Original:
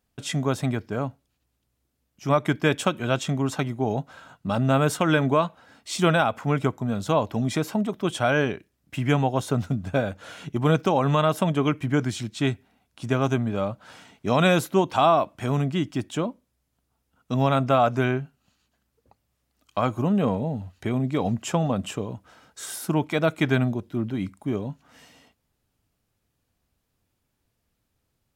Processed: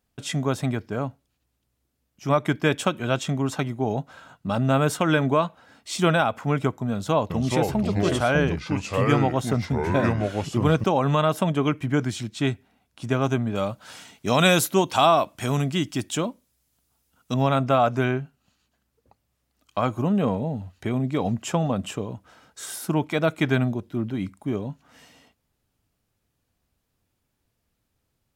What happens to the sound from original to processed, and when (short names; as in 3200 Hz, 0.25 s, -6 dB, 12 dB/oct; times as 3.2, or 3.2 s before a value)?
6.92–10.84 echoes that change speed 0.381 s, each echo -4 st, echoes 2
13.55–17.34 high shelf 3200 Hz +11.5 dB